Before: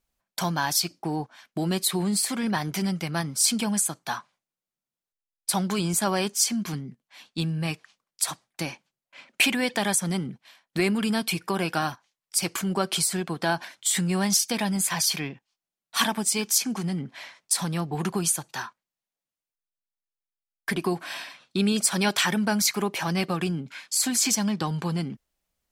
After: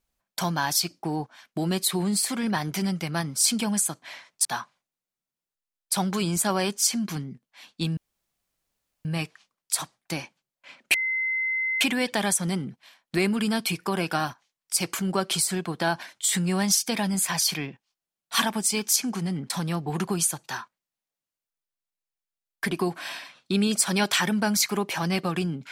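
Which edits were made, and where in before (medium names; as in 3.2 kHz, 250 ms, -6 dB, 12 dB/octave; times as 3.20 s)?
7.54 s: insert room tone 1.08 s
9.43 s: add tone 2.06 kHz -23.5 dBFS 0.87 s
17.12–17.55 s: move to 4.02 s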